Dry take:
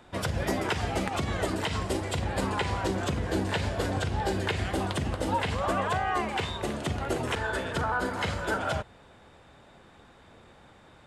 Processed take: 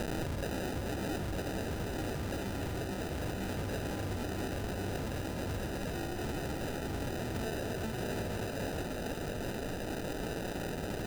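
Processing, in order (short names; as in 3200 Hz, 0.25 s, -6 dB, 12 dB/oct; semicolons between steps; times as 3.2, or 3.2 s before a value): requantised 6-bit, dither triangular; 6.35–6.82 HPF 1100 Hz; negative-ratio compressor -30 dBFS, ratio -0.5; sample-and-hold 40×; echo with dull and thin repeats by turns 0.184 s, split 1400 Hz, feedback 90%, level -10 dB; limiter -29 dBFS, peak gain reduction 12 dB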